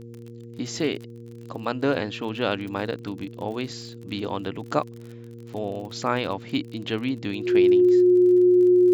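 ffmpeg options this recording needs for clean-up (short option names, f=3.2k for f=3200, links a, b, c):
-af "adeclick=t=4,bandreject=f=117.3:t=h:w=4,bandreject=f=234.6:t=h:w=4,bandreject=f=351.9:t=h:w=4,bandreject=f=469.2:t=h:w=4,bandreject=f=360:w=30"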